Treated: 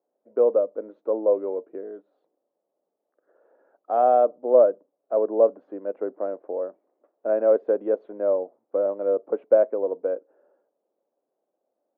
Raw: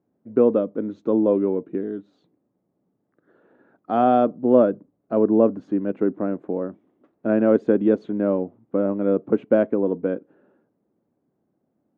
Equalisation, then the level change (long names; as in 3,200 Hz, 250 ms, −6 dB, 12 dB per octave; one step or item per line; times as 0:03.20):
four-pole ladder band-pass 650 Hz, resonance 50%
spectral tilt +1.5 dB per octave
+8.5 dB